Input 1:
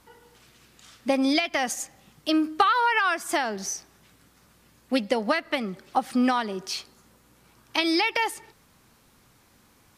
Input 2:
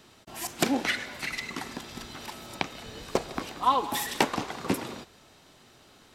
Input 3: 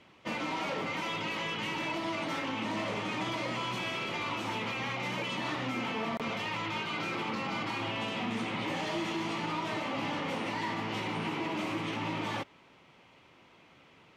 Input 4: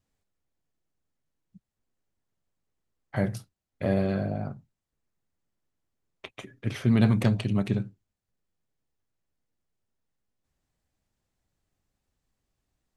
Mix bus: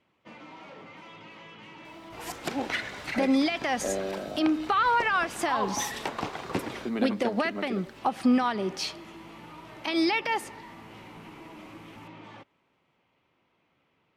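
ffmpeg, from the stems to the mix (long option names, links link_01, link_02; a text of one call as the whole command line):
ffmpeg -i stem1.wav -i stem2.wav -i stem3.wav -i stem4.wav -filter_complex "[0:a]adelay=2100,volume=3dB[link_01];[1:a]equalizer=frequency=230:width_type=o:width=0.77:gain=-6,acrusher=bits=9:mix=0:aa=0.000001,adelay=1850,volume=0dB[link_02];[2:a]volume=-12dB[link_03];[3:a]highpass=frequency=270:width=0.5412,highpass=frequency=270:width=1.3066,volume=-2.5dB,asplit=2[link_04][link_05];[link_05]apad=whole_len=624845[link_06];[link_03][link_06]sidechaincompress=threshold=-56dB:ratio=8:attack=16:release=178[link_07];[link_01][link_02]amix=inputs=2:normalize=0,alimiter=limit=-15.5dB:level=0:latency=1:release=160,volume=0dB[link_08];[link_07][link_04][link_08]amix=inputs=3:normalize=0,aemphasis=mode=reproduction:type=cd" out.wav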